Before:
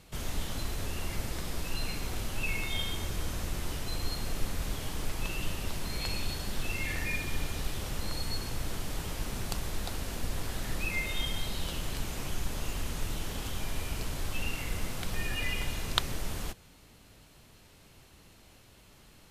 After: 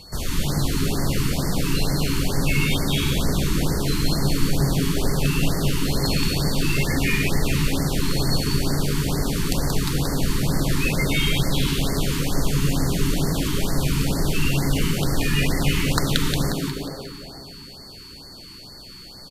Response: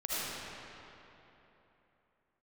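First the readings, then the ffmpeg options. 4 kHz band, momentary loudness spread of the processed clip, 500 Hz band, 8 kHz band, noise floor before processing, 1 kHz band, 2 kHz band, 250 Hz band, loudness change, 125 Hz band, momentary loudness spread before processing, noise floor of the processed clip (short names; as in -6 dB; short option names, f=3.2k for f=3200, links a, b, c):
+11.0 dB, 15 LU, +15.0 dB, +11.5 dB, -57 dBFS, +10.5 dB, +9.5 dB, +18.5 dB, +13.0 dB, +16.0 dB, 5 LU, -41 dBFS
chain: -filter_complex "[0:a]aeval=exprs='val(0)+0.00224*sin(2*PI*4400*n/s)':c=same,asplit=7[a][b][c][d][e][f][g];[b]adelay=179,afreqshift=130,volume=-4dB[h];[c]adelay=358,afreqshift=260,volume=-10dB[i];[d]adelay=537,afreqshift=390,volume=-16dB[j];[e]adelay=716,afreqshift=520,volume=-22.1dB[k];[f]adelay=895,afreqshift=650,volume=-28.1dB[l];[g]adelay=1074,afreqshift=780,volume=-34.1dB[m];[a][h][i][j][k][l][m]amix=inputs=7:normalize=0,asplit=2[n][o];[1:a]atrim=start_sample=2205[p];[o][p]afir=irnorm=-1:irlink=0,volume=-14dB[q];[n][q]amix=inputs=2:normalize=0,acontrast=59,afftfilt=real='re*(1-between(b*sr/1024,580*pow(3100/580,0.5+0.5*sin(2*PI*2.2*pts/sr))/1.41,580*pow(3100/580,0.5+0.5*sin(2*PI*2.2*pts/sr))*1.41))':imag='im*(1-between(b*sr/1024,580*pow(3100/580,0.5+0.5*sin(2*PI*2.2*pts/sr))/1.41,580*pow(3100/580,0.5+0.5*sin(2*PI*2.2*pts/sr))*1.41))':win_size=1024:overlap=0.75,volume=2dB"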